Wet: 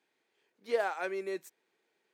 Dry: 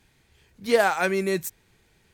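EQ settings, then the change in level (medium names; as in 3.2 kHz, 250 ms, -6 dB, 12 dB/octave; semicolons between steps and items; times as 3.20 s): ladder high-pass 280 Hz, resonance 25%; low-pass 3.6 kHz 6 dB/octave; -6.0 dB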